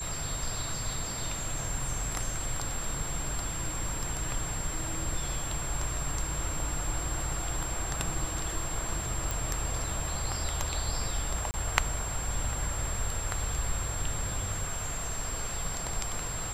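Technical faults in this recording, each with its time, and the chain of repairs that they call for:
whistle 7,500 Hz −36 dBFS
0:09.31: click
0:11.51–0:11.54: drop-out 29 ms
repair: click removal
notch filter 7,500 Hz, Q 30
repair the gap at 0:11.51, 29 ms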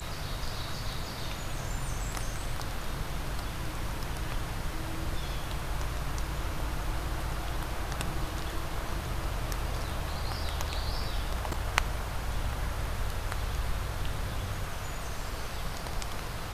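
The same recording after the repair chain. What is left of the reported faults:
none of them is left

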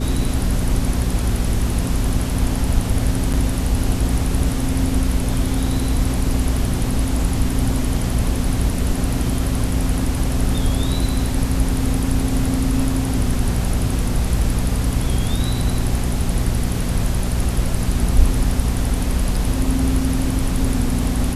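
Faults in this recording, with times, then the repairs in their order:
mains hum 60 Hz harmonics 4 −23 dBFS
0:03.33–0:03.34: drop-out 7.1 ms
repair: hum removal 60 Hz, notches 4
repair the gap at 0:03.33, 7.1 ms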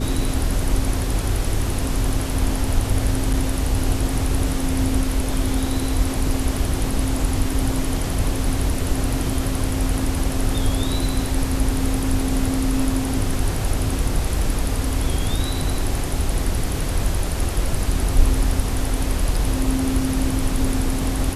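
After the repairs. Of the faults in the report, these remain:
none of them is left

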